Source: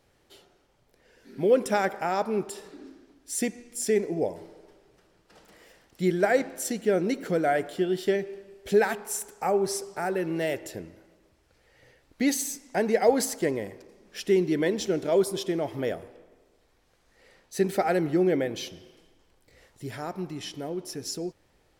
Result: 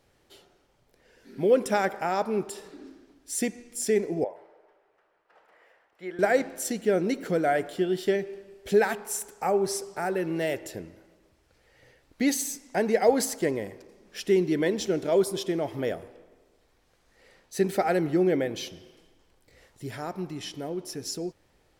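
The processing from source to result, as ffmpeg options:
-filter_complex "[0:a]asettb=1/sr,asplit=3[a][b][c];[a]atrim=end=4.244[d];[b]atrim=start=4.24:end=6.19,asetpts=PTS-STARTPTS,afade=t=in:d=0.004:c=qsin,afade=t=out:st=1.946:d=0.004:c=qsin,acrossover=split=500 2300:gain=0.0631 1 0.0891[e][f][g];[e][f][g]amix=inputs=3:normalize=0[h];[c]atrim=start=6.186[i];[d][h]acrossfade=d=0.004:c1=hsin:c2=qsin[j];[j][i]acrossfade=d=0.004:c1=qsin:c2=hsin"

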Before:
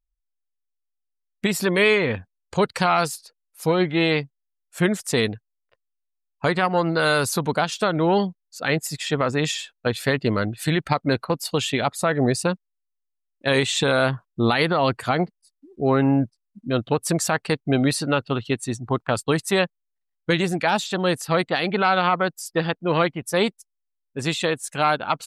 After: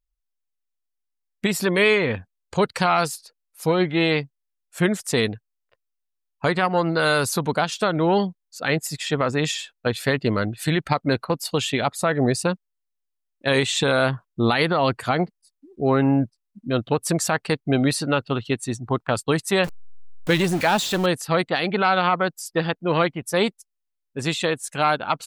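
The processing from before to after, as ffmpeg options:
-filter_complex "[0:a]asettb=1/sr,asplit=3[a][b][c];[a]atrim=end=19.644[d];[b]atrim=start=19.64:end=21.06,asetpts=PTS-STARTPTS,afade=t=in:d=0.004:c=qsin,afade=t=out:st=1.416:d=0.004:c=qsin,aeval=exprs='val(0)+0.5*0.0447*sgn(val(0))':c=same[e];[c]atrim=start=21.056[f];[d][e]acrossfade=d=0.004:c1=hsin:c2=qsin[g];[g][f]acrossfade=d=0.004:c1=qsin:c2=hsin"

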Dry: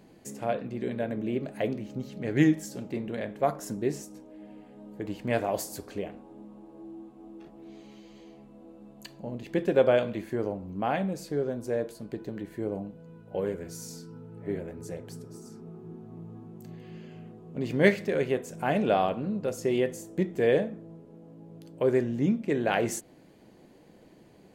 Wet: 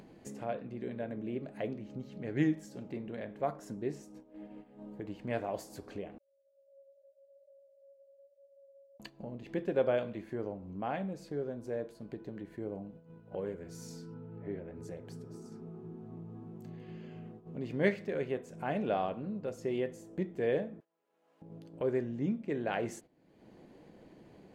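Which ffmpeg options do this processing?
-filter_complex "[0:a]asettb=1/sr,asplit=3[a][b][c];[a]atrim=end=6.184[d];[b]atrim=start=6.18:end=9,asetpts=PTS-STARTPTS,afade=t=in:d=0.004:c=qsin,afade=t=out:st=2.816:d=0.004:c=qsin,asuperpass=centerf=570:order=20:qfactor=7.7[e];[c]atrim=start=8.996[f];[d][e]acrossfade=d=0.004:c1=hsin:c2=qsin[g];[g][f]acrossfade=d=0.004:c1=qsin:c2=hsin,asettb=1/sr,asplit=3[h][i][j];[h]atrim=end=14.144[k];[i]atrim=start=14.14:end=14.76,asetpts=PTS-STARTPTS,afade=t=in:d=0.004:c=qsin,afade=t=out:st=0.616:d=0.004:c=qsin,lowpass=3.8k[l];[j]atrim=start=14.756[m];[k][l]acrossfade=d=0.004:c1=hsin:c2=qsin[n];[n][m]acrossfade=d=0.004:c1=qsin:c2=hsin,asettb=1/sr,asplit=3[o][p][q];[o]atrim=end=20.804[r];[p]atrim=start=20.8:end=21.42,asetpts=PTS-STARTPTS,afade=t=in:d=0.004:c=qsin,afade=t=out:st=0.616:d=0.004:c=qsin,highpass=1.4k[s];[q]atrim=start=21.416[t];[r][s]acrossfade=d=0.004:c1=hsin:c2=qsin[u];[u][t]acrossfade=d=0.004:c1=qsin:c2=hsin,lowpass=f=3.3k:p=1,agate=range=-13dB:threshold=-46dB:ratio=16:detection=peak,acompressor=mode=upward:threshold=-31dB:ratio=2.5,volume=-7.5dB"

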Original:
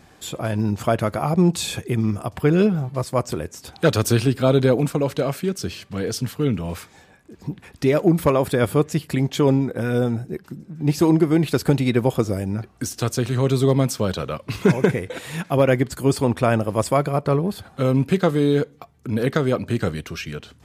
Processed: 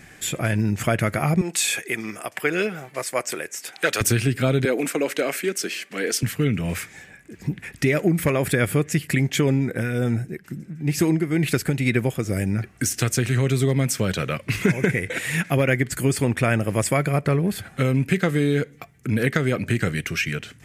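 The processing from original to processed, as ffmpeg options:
-filter_complex "[0:a]asettb=1/sr,asplit=3[a][b][c];[a]atrim=end=1.414[d];[b]atrim=start=1.41:end=4.01,asetpts=PTS-STARTPTS,afade=t=in:d=0.004:c=qsin,afade=t=out:st=2.596:d=0.004:c=qsin,highpass=480[e];[c]atrim=start=4.006[f];[d][e]acrossfade=d=0.004:c1=hsin:c2=qsin[g];[g][f]acrossfade=d=0.004:c1=qsin:c2=hsin,asettb=1/sr,asplit=3[h][i][j];[h]atrim=end=4.654[k];[i]atrim=start=4.65:end=6.23,asetpts=PTS-STARTPTS,afade=t=in:d=0.004:c=qsin,afade=t=out:st=1.576:d=0.004:c=qsin,highpass=f=270:w=0.5412,highpass=f=270:w=1.3066[l];[j]atrim=start=6.226[m];[k][l]acrossfade=d=0.004:c1=hsin:c2=qsin[n];[n][m]acrossfade=d=0.004:c1=qsin:c2=hsin,asettb=1/sr,asplit=3[o][p][q];[o]atrim=end=9.704[r];[p]atrim=start=9.7:end=12.37,asetpts=PTS-STARTPTS,afade=t=in:d=0.004:c=qsin,afade=t=out:st=2.666:d=0.004:c=qsin,tremolo=f=2.2:d=0.54[s];[q]atrim=start=12.366[t];[r][s]acrossfade=d=0.004:c1=hsin:c2=qsin[u];[u][t]acrossfade=d=0.004:c1=qsin:c2=hsin,equalizer=f=250:t=o:w=1:g=-3,equalizer=f=500:t=o:w=1:g=-4,equalizer=f=1k:t=o:w=1:g=-11,equalizer=f=2k:t=o:w=1:g=10,equalizer=f=4k:t=o:w=1:g=-7,equalizer=f=8k:t=o:w=1:g=3,acompressor=threshold=-23dB:ratio=3,equalizer=f=70:w=3.8:g=-14,volume=6dB"

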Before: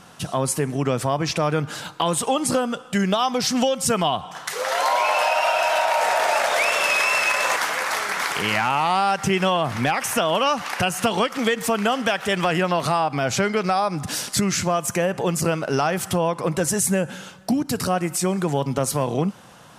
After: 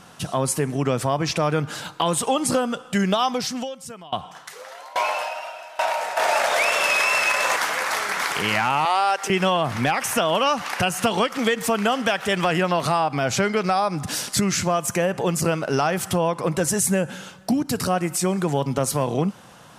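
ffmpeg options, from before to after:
-filter_complex "[0:a]asettb=1/sr,asplit=3[a][b][c];[a]atrim=end=3.294[d];[b]atrim=start=3.29:end=6.17,asetpts=PTS-STARTPTS,afade=t=in:d=0.004:c=qsin,afade=t=out:st=2.876:d=0.004:c=qsin,aeval=exprs='val(0)*pow(10,-23*if(lt(mod(1.2*n/s,1),2*abs(1.2)/1000),1-mod(1.2*n/s,1)/(2*abs(1.2)/1000),(mod(1.2*n/s,1)-2*abs(1.2)/1000)/(1-2*abs(1.2)/1000))/20)':c=same[e];[c]atrim=start=6.166[f];[d][e]acrossfade=d=0.004:c1=hsin:c2=qsin[g];[g][f]acrossfade=d=0.004:c1=qsin:c2=hsin,asettb=1/sr,asplit=3[h][i][j];[h]atrim=end=8.854[k];[i]atrim=start=8.85:end=9.3,asetpts=PTS-STARTPTS,afade=t=in:d=0.004:c=qsin,afade=t=out:st=0.446:d=0.004:c=qsin,highpass=f=360:w=0.5412,highpass=f=360:w=1.3066[l];[j]atrim=start=9.296[m];[k][l]acrossfade=d=0.004:c1=hsin:c2=qsin[n];[n][m]acrossfade=d=0.004:c1=qsin:c2=hsin"

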